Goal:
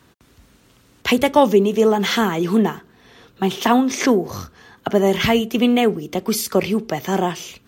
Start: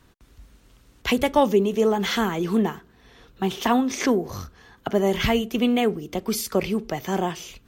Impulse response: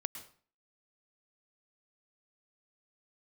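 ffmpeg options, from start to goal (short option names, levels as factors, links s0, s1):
-af "highpass=98,volume=1.78"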